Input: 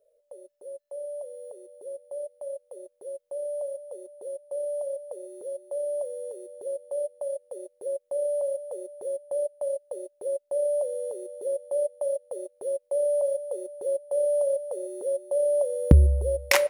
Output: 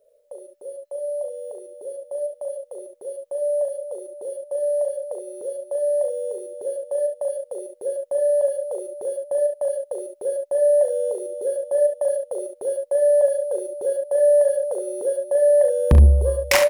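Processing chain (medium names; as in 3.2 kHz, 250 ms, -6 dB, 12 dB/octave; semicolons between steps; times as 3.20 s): saturation -15 dBFS, distortion -11 dB; early reflections 39 ms -8.5 dB, 70 ms -8 dB; trim +6.5 dB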